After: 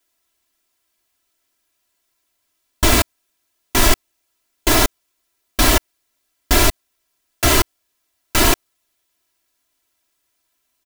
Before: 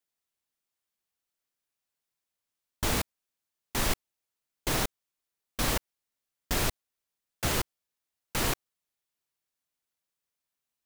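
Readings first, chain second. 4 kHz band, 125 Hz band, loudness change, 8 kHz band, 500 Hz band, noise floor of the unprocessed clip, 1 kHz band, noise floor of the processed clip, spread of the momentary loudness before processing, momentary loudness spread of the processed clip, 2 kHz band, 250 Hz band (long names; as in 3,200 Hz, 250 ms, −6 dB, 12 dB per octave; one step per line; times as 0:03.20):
+14.0 dB, +12.0 dB, +14.0 dB, +14.0 dB, +14.0 dB, below −85 dBFS, +14.0 dB, −71 dBFS, 7 LU, 8 LU, +14.0 dB, +14.5 dB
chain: comb filter 3 ms, depth 95%
in parallel at +2 dB: brickwall limiter −19.5 dBFS, peak gain reduction 8 dB
on the sum: level +6.5 dB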